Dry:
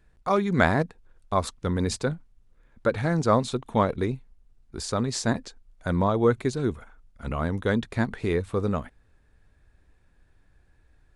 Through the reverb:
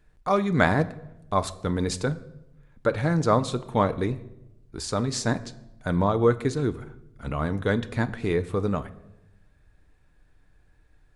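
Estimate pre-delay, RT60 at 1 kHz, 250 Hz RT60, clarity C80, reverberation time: 7 ms, 0.80 s, 1.1 s, 19.5 dB, 0.90 s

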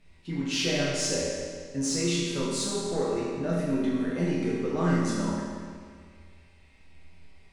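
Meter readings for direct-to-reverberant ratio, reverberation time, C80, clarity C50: −7.5 dB, 1.9 s, 0.0 dB, −2.0 dB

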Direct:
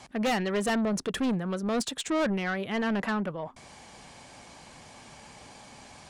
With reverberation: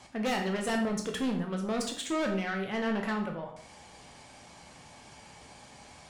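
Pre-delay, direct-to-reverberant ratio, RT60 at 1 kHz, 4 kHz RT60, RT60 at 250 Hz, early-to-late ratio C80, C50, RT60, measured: 10 ms, 2.0 dB, 0.55 s, 0.50 s, 0.60 s, 11.0 dB, 7.0 dB, 0.55 s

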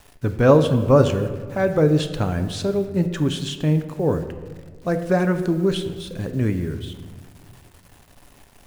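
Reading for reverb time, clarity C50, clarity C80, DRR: 1.6 s, 10.0 dB, 11.5 dB, 7.5 dB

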